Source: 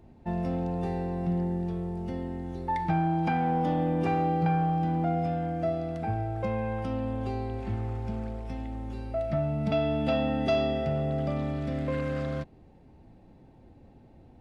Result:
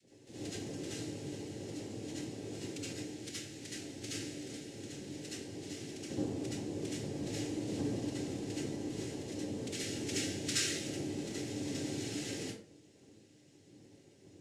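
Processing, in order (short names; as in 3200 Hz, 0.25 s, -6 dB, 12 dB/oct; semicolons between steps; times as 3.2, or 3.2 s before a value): inverse Chebyshev band-stop 230–1600 Hz, stop band 70 dB; high shelf 4600 Hz +8 dB; noise vocoder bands 3; reverb RT60 0.45 s, pre-delay 63 ms, DRR -8.5 dB; gain +11.5 dB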